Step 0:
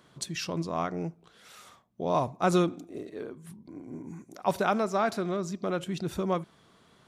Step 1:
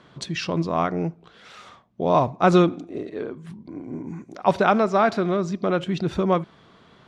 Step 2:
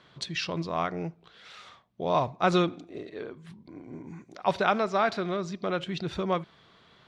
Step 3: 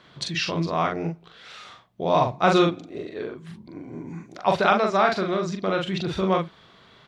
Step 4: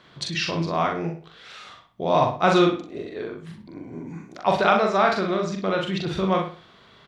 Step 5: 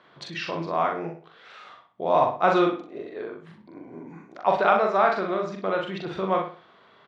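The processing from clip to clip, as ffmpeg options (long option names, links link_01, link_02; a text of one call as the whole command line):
ffmpeg -i in.wav -af "lowpass=4100,volume=8dB" out.wav
ffmpeg -i in.wav -af "equalizer=frequency=250:width_type=o:width=1:gain=-4,equalizer=frequency=2000:width_type=o:width=1:gain=3,equalizer=frequency=4000:width_type=o:width=1:gain=6,volume=-6.5dB" out.wav
ffmpeg -i in.wav -filter_complex "[0:a]asplit=2[link_01][link_02];[link_02]adelay=42,volume=-3.5dB[link_03];[link_01][link_03]amix=inputs=2:normalize=0,volume=4dB" out.wav
ffmpeg -i in.wav -filter_complex "[0:a]asplit=2[link_01][link_02];[link_02]adelay=62,lowpass=frequency=4700:poles=1,volume=-8dB,asplit=2[link_03][link_04];[link_04]adelay=62,lowpass=frequency=4700:poles=1,volume=0.34,asplit=2[link_05][link_06];[link_06]adelay=62,lowpass=frequency=4700:poles=1,volume=0.34,asplit=2[link_07][link_08];[link_08]adelay=62,lowpass=frequency=4700:poles=1,volume=0.34[link_09];[link_01][link_03][link_05][link_07][link_09]amix=inputs=5:normalize=0" out.wav
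ffmpeg -i in.wav -af "bandpass=frequency=820:width_type=q:width=0.56:csg=0" out.wav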